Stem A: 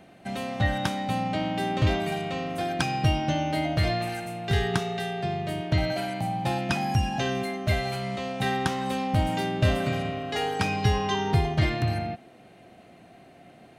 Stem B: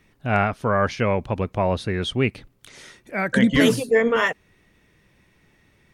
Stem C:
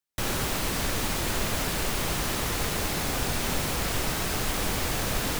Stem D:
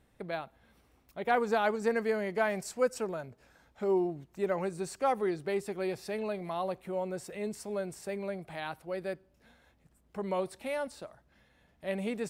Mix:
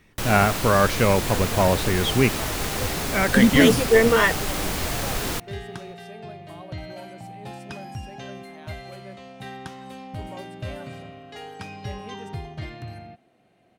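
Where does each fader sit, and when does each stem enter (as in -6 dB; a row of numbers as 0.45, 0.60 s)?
-11.0, +2.0, +1.0, -9.5 dB; 1.00, 0.00, 0.00, 0.00 s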